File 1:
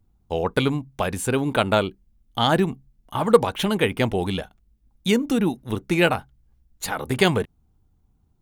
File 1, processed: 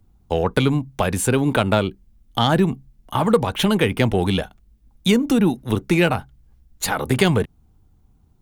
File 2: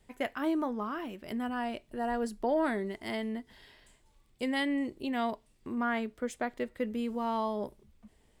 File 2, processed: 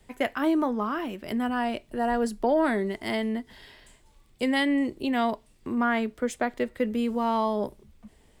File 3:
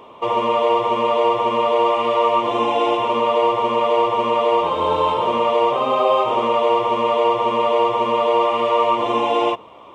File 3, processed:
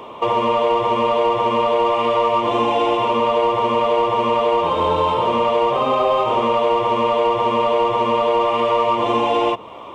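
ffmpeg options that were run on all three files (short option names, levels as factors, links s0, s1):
-filter_complex "[0:a]asplit=2[s0][s1];[s1]asoftclip=type=tanh:threshold=0.119,volume=0.398[s2];[s0][s2]amix=inputs=2:normalize=0,acrossover=split=210[s3][s4];[s4]acompressor=threshold=0.0708:ratio=2[s5];[s3][s5]amix=inputs=2:normalize=0,volume=1.58"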